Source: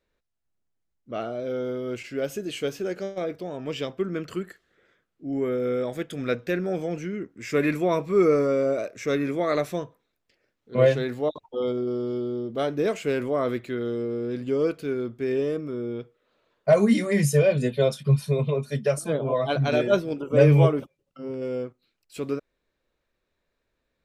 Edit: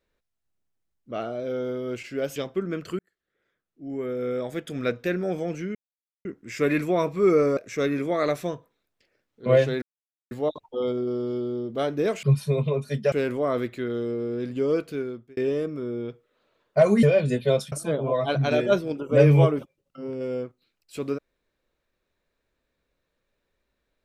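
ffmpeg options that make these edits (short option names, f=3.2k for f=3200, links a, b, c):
-filter_complex "[0:a]asplit=11[a][b][c][d][e][f][g][h][i][j][k];[a]atrim=end=2.362[l];[b]atrim=start=3.788:end=4.42,asetpts=PTS-STARTPTS,afade=t=out:st=0.628:d=0.004:c=hsin[m];[c]atrim=start=4.42:end=7.18,asetpts=PTS-STARTPTS,afade=t=in:d=1.7,afade=t=out:st=2.756:d=0.004:c=hsin,apad=pad_dur=0.5[n];[d]atrim=start=7.18:end=8.502,asetpts=PTS-STARTPTS,afade=t=in:d=0.004:c=hsin[o];[e]atrim=start=8.858:end=11.11,asetpts=PTS-STARTPTS,afade=t=out:st=2.248:d=0.004:c=hsin,apad=pad_dur=0.49[p];[f]atrim=start=11.11:end=13.032,asetpts=PTS-STARTPTS,afade=t=in:d=0.004:c=hsin[q];[g]atrim=start=18.038:end=18.932[r];[h]atrim=start=13.028:end=15.28,asetpts=PTS-STARTPTS,afade=t=out:st=1.792:d=0.46[s];[i]atrim=start=15.28:end=16.942,asetpts=PTS-STARTPTS,afade=t=in:d=0.004:c=hsin[t];[j]atrim=start=17.348:end=18.042[u];[k]atrim=start=18.928[v];[m][n][o]concat=n=3:v=0:a=1[w];[l][w]acrossfade=d=0.004:c1=hsin:c2=hsin[x];[p][q]concat=n=2:v=0:a=1[y];[x][y]acrossfade=d=0.004:c1=hsin:c2=hsin[z];[z][r]acrossfade=d=0.004:c1=hsin:c2=hsin[aa];[s][t]concat=n=2:v=0:a=1[ab];[aa][ab]acrossfade=d=0.004:c1=hsin:c2=hsin[ac];[ac][u]acrossfade=d=0.004:c1=hsin:c2=hsin[ad];[ad][v]acrossfade=d=0.004:c1=hsin:c2=hsin"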